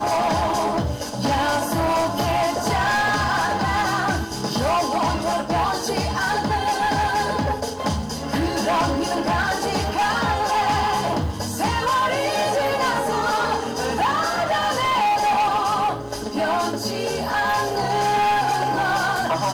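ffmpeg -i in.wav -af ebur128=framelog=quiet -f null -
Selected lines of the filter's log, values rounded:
Integrated loudness:
  I:         -21.5 LUFS
  Threshold: -31.5 LUFS
Loudness range:
  LRA:         1.4 LU
  Threshold: -41.5 LUFS
  LRA low:   -22.3 LUFS
  LRA high:  -20.9 LUFS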